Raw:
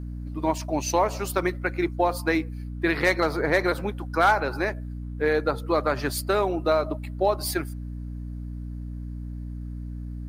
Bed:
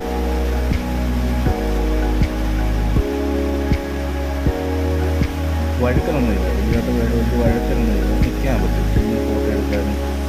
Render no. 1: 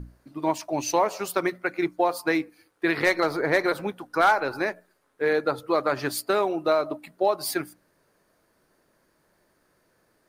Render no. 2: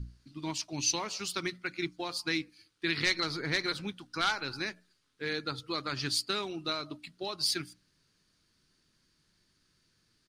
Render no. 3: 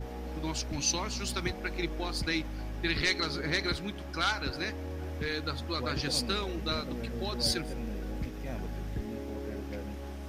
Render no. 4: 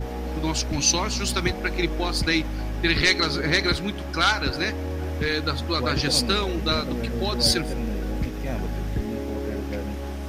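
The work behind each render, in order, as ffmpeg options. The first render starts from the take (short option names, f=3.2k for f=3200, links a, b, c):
-af "bandreject=f=60:t=h:w=6,bandreject=f=120:t=h:w=6,bandreject=f=180:t=h:w=6,bandreject=f=240:t=h:w=6,bandreject=f=300:t=h:w=6"
-af "firequalizer=gain_entry='entry(110,0);entry(580,-21);entry(1300,-9);entry(1800,-8);entry(3000,3);entry(4600,6);entry(14000,-17)':delay=0.05:min_phase=1"
-filter_complex "[1:a]volume=-19.5dB[a];[0:a][a]amix=inputs=2:normalize=0"
-af "volume=9dB"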